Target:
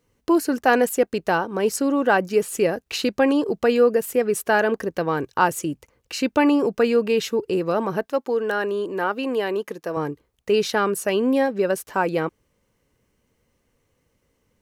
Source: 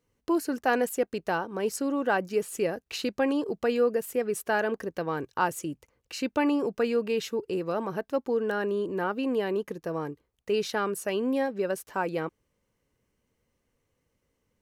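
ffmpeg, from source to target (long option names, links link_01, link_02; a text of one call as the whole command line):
ffmpeg -i in.wav -filter_complex "[0:a]asettb=1/sr,asplit=3[link_01][link_02][link_03];[link_01]atrim=end=8.064[link_04];[link_02]atrim=start=8.06:end=9.97,asetpts=PTS-STARTPTS,afade=type=in:duration=0.004:curve=qsin,afade=type=out:start_time=1.906:duration=0.004:curve=qsin,highpass=frequency=450:poles=1[link_05];[link_03]atrim=start=9.966[link_06];[link_04][link_05]acrossfade=duration=0.004:curve1=hsin:curve2=qsin[link_07];[link_07][link_06]acrossfade=duration=0.004:curve1=qsin:curve2=hsin,volume=7.5dB" out.wav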